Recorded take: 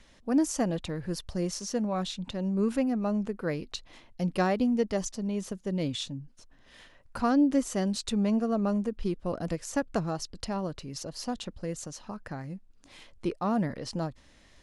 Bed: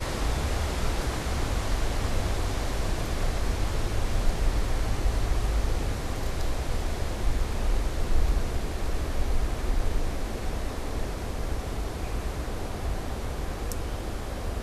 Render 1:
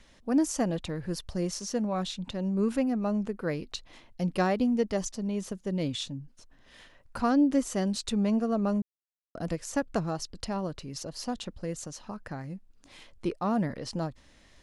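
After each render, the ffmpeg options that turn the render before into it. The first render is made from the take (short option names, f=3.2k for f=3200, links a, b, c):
-filter_complex "[0:a]asplit=3[a][b][c];[a]atrim=end=8.82,asetpts=PTS-STARTPTS,afade=t=out:st=8.816:d=0.004:c=hsin[d];[b]atrim=start=8.82:end=9.35,asetpts=PTS-STARTPTS,volume=0[e];[c]atrim=start=9.35,asetpts=PTS-STARTPTS,afade=t=in:d=0.004:c=hsin[f];[d][e][f]concat=n=3:v=0:a=1"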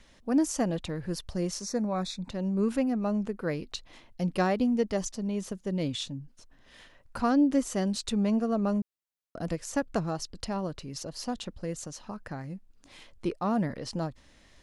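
-filter_complex "[0:a]asplit=3[a][b][c];[a]afade=t=out:st=1.61:d=0.02[d];[b]asuperstop=centerf=3000:order=8:qfactor=3.3,afade=t=in:st=1.61:d=0.02,afade=t=out:st=2.29:d=0.02[e];[c]afade=t=in:st=2.29:d=0.02[f];[d][e][f]amix=inputs=3:normalize=0"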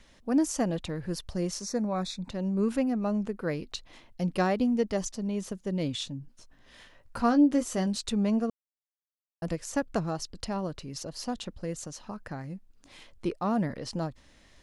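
-filter_complex "[0:a]asettb=1/sr,asplit=3[a][b][c];[a]atrim=end=6.214[d];[b]atrim=start=6.21:end=7.87,asetpts=PTS-STARTPTS,afade=t=in:d=0.004:c=qsin,afade=t=out:st=1.656:d=0.004:c=qsin,asplit=2[e][f];[f]adelay=17,volume=-8.5dB[g];[e][g]amix=inputs=2:normalize=0,atrim=end_sample=73206[h];[c]atrim=start=7.866[i];[d][h]acrossfade=d=0.004:c1=hsin:c2=qsin[j];[j][i]acrossfade=d=0.004:c1=qsin:c2=hsin,asplit=3[k][l][m];[k]atrim=end=8.5,asetpts=PTS-STARTPTS,afade=t=out:st=8.496:d=0.004:c=hsin[n];[l]atrim=start=8.5:end=9.42,asetpts=PTS-STARTPTS,volume=0[o];[m]atrim=start=9.42,asetpts=PTS-STARTPTS,afade=t=in:d=0.004:c=hsin[p];[n][o][p]concat=n=3:v=0:a=1"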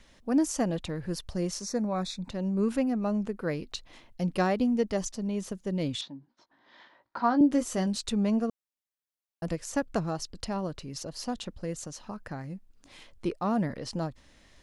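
-filter_complex "[0:a]asettb=1/sr,asplit=3[a][b][c];[a]atrim=end=6.014[d];[b]atrim=start=6.01:end=7.41,asetpts=PTS-STARTPTS,afade=t=in:d=0.004:c=qsin,afade=t=out:st=1.396:d=0.004:c=qsin,highpass=300,equalizer=f=330:t=q:w=4:g=4,equalizer=f=470:t=q:w=4:g=-7,equalizer=f=920:t=q:w=4:g=7,equalizer=f=2.7k:t=q:w=4:g=-10,lowpass=f=4.2k:w=0.5412,lowpass=f=4.2k:w=1.3066[e];[c]atrim=start=7.406[f];[d][e]acrossfade=d=0.004:c1=hsin:c2=qsin[g];[g][f]acrossfade=d=0.004:c1=qsin:c2=hsin"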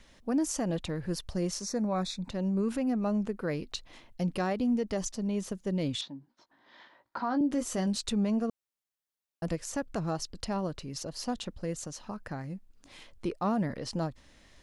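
-af "alimiter=limit=-21.5dB:level=0:latency=1:release=75"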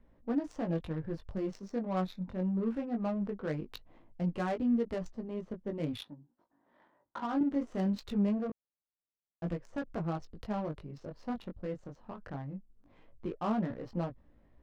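-af "flanger=delay=17:depth=4.9:speed=0.21,adynamicsmooth=sensitivity=7:basefreq=860"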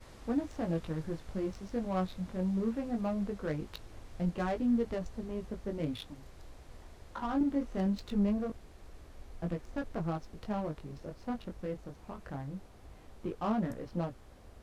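-filter_complex "[1:a]volume=-23dB[a];[0:a][a]amix=inputs=2:normalize=0"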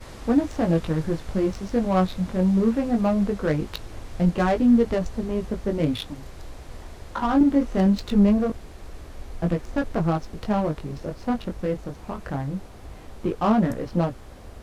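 -af "volume=12dB"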